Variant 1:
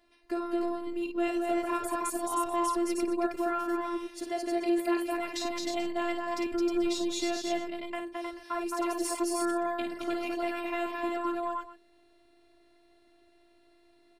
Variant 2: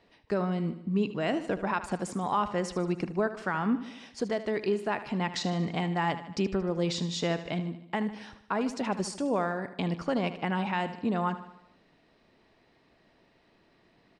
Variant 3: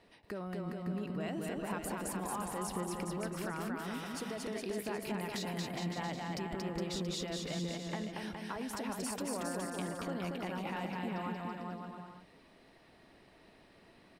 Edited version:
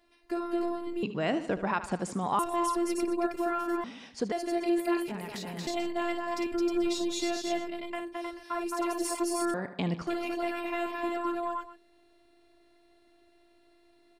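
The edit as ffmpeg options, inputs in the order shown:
-filter_complex "[1:a]asplit=3[a][b][c];[0:a]asplit=5[d][e][f][g][h];[d]atrim=end=1.032[i];[a]atrim=start=1.028:end=2.392[j];[e]atrim=start=2.388:end=3.842[k];[b]atrim=start=3.838:end=4.322[l];[f]atrim=start=4.318:end=5.082[m];[2:a]atrim=start=5.078:end=5.672[n];[g]atrim=start=5.668:end=9.542[o];[c]atrim=start=9.538:end=10.072[p];[h]atrim=start=10.068[q];[i][j]acrossfade=d=0.004:c1=hsin:c2=hsin[r];[r][k]acrossfade=d=0.004:c1=hsin:c2=hsin[s];[s][l]acrossfade=d=0.004:c1=hsin:c2=hsin[t];[t][m]acrossfade=d=0.004:c1=hsin:c2=hsin[u];[u][n]acrossfade=d=0.004:c1=hsin:c2=hsin[v];[v][o]acrossfade=d=0.004:c1=hsin:c2=hsin[w];[w][p]acrossfade=d=0.004:c1=hsin:c2=hsin[x];[x][q]acrossfade=d=0.004:c1=hsin:c2=hsin"

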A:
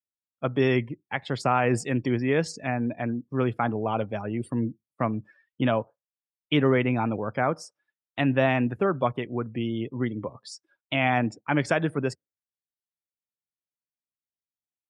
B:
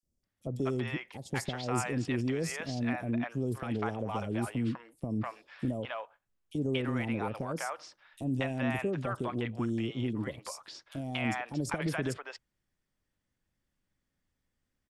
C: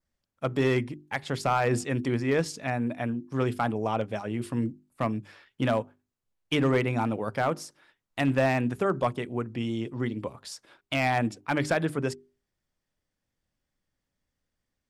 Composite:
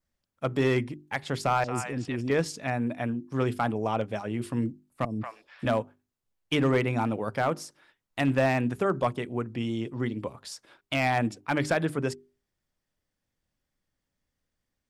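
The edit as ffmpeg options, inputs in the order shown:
-filter_complex "[1:a]asplit=2[a][b];[2:a]asplit=3[c][d][e];[c]atrim=end=1.642[f];[a]atrim=start=1.638:end=2.302[g];[d]atrim=start=2.298:end=5.052[h];[b]atrim=start=5.048:end=5.662[i];[e]atrim=start=5.658[j];[f][g]acrossfade=d=0.004:c1=hsin:c2=hsin[k];[k][h]acrossfade=d=0.004:c1=hsin:c2=hsin[l];[l][i]acrossfade=d=0.004:c1=hsin:c2=hsin[m];[m][j]acrossfade=d=0.004:c1=hsin:c2=hsin"

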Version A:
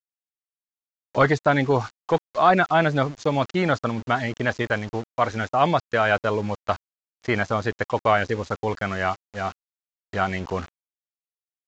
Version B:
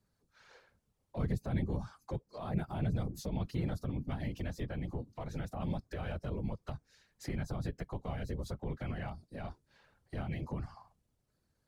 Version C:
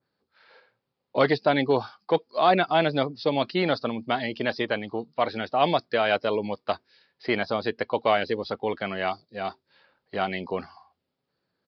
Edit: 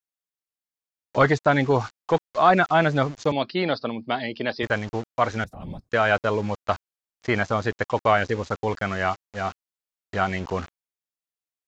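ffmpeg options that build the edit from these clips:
-filter_complex "[0:a]asplit=3[a][b][c];[a]atrim=end=3.322[d];[2:a]atrim=start=3.318:end=4.632[e];[b]atrim=start=4.628:end=5.442[f];[1:a]atrim=start=5.438:end=5.892[g];[c]atrim=start=5.888[h];[d][e]acrossfade=d=0.004:c1=hsin:c2=hsin[i];[i][f]acrossfade=d=0.004:c1=hsin:c2=hsin[j];[j][g]acrossfade=d=0.004:c1=hsin:c2=hsin[k];[k][h]acrossfade=d=0.004:c1=hsin:c2=hsin"

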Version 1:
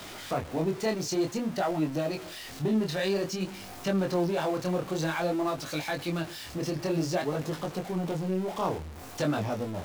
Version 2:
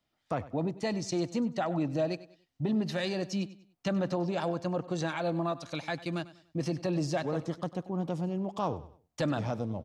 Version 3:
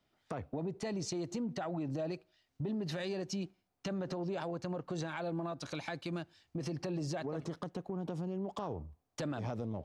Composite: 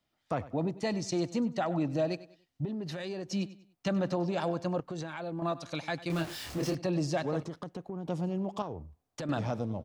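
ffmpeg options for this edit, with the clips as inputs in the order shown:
-filter_complex "[2:a]asplit=4[a][b][c][d];[1:a]asplit=6[e][f][g][h][i][j];[e]atrim=end=2.652[k];[a]atrim=start=2.648:end=3.312[l];[f]atrim=start=3.308:end=4.802[m];[b]atrim=start=4.798:end=5.422[n];[g]atrim=start=5.418:end=6.102[o];[0:a]atrim=start=6.098:end=6.752[p];[h]atrim=start=6.748:end=7.432[q];[c]atrim=start=7.428:end=8.082[r];[i]atrim=start=8.078:end=8.622[s];[d]atrim=start=8.618:end=9.292[t];[j]atrim=start=9.288[u];[k][l]acrossfade=d=0.004:c1=hsin:c2=hsin[v];[v][m]acrossfade=d=0.004:c1=hsin:c2=hsin[w];[w][n]acrossfade=d=0.004:c1=hsin:c2=hsin[x];[x][o]acrossfade=d=0.004:c1=hsin:c2=hsin[y];[y][p]acrossfade=d=0.004:c1=hsin:c2=hsin[z];[z][q]acrossfade=d=0.004:c1=hsin:c2=hsin[aa];[aa][r]acrossfade=d=0.004:c1=hsin:c2=hsin[ab];[ab][s]acrossfade=d=0.004:c1=hsin:c2=hsin[ac];[ac][t]acrossfade=d=0.004:c1=hsin:c2=hsin[ad];[ad][u]acrossfade=d=0.004:c1=hsin:c2=hsin"

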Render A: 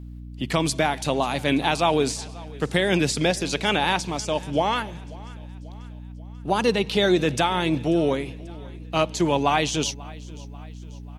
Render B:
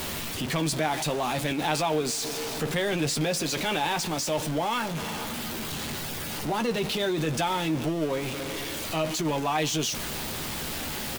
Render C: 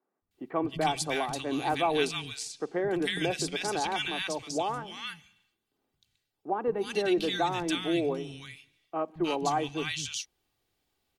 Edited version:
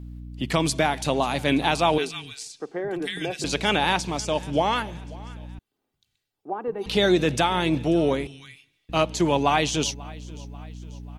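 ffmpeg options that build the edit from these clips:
-filter_complex "[2:a]asplit=3[a][b][c];[0:a]asplit=4[d][e][f][g];[d]atrim=end=1.982[h];[a]atrim=start=1.978:end=3.442[i];[e]atrim=start=3.438:end=5.592[j];[b]atrim=start=5.588:end=6.862[k];[f]atrim=start=6.858:end=8.272[l];[c]atrim=start=8.268:end=8.892[m];[g]atrim=start=8.888[n];[h][i]acrossfade=d=0.004:c1=hsin:c2=hsin[o];[o][j]acrossfade=d=0.004:c1=hsin:c2=hsin[p];[p][k]acrossfade=d=0.004:c1=hsin:c2=hsin[q];[q][l]acrossfade=d=0.004:c1=hsin:c2=hsin[r];[r][m]acrossfade=d=0.004:c1=hsin:c2=hsin[s];[s][n]acrossfade=d=0.004:c1=hsin:c2=hsin"

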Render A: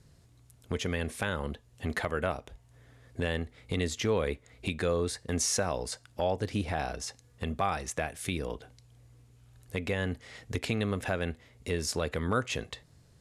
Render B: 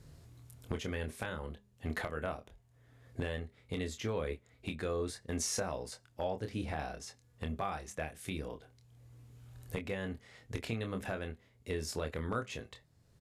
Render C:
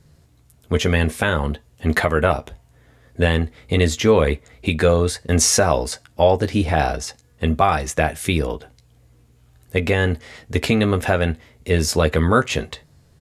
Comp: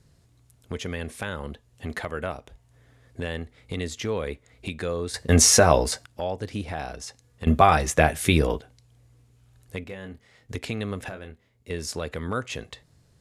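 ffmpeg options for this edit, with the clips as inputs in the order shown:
-filter_complex "[2:a]asplit=2[a][b];[1:a]asplit=2[c][d];[0:a]asplit=5[e][f][g][h][i];[e]atrim=end=5.142[j];[a]atrim=start=5.138:end=6.062[k];[f]atrim=start=6.058:end=7.472[l];[b]atrim=start=7.468:end=8.612[m];[g]atrim=start=8.608:end=9.842[n];[c]atrim=start=9.838:end=10.492[o];[h]atrim=start=10.488:end=11.092[p];[d]atrim=start=11.088:end=11.702[q];[i]atrim=start=11.698[r];[j][k]acrossfade=d=0.004:c1=hsin:c2=hsin[s];[s][l]acrossfade=d=0.004:c1=hsin:c2=hsin[t];[t][m]acrossfade=d=0.004:c1=hsin:c2=hsin[u];[u][n]acrossfade=d=0.004:c1=hsin:c2=hsin[v];[v][o]acrossfade=d=0.004:c1=hsin:c2=hsin[w];[w][p]acrossfade=d=0.004:c1=hsin:c2=hsin[x];[x][q]acrossfade=d=0.004:c1=hsin:c2=hsin[y];[y][r]acrossfade=d=0.004:c1=hsin:c2=hsin"

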